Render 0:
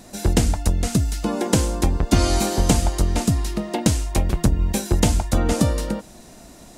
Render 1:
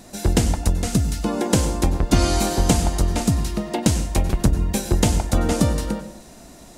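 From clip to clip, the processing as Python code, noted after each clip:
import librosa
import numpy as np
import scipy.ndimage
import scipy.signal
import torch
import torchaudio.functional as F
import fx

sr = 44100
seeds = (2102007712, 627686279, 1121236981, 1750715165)

y = fx.rev_plate(x, sr, seeds[0], rt60_s=0.56, hf_ratio=0.6, predelay_ms=85, drr_db=11.5)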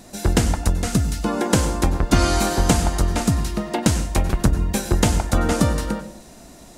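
y = fx.dynamic_eq(x, sr, hz=1400.0, q=1.3, threshold_db=-41.0, ratio=4.0, max_db=6)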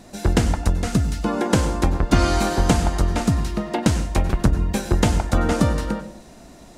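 y = fx.high_shelf(x, sr, hz=6400.0, db=-9.0)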